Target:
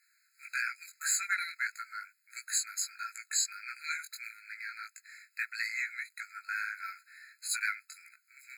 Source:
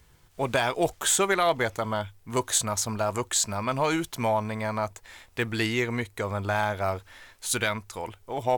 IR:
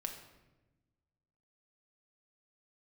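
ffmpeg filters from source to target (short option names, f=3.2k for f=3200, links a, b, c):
-af "flanger=delay=17:depth=4.8:speed=1.6,afftfilt=real='re*eq(mod(floor(b*sr/1024/1300),2),1)':imag='im*eq(mod(floor(b*sr/1024/1300),2),1)':win_size=1024:overlap=0.75"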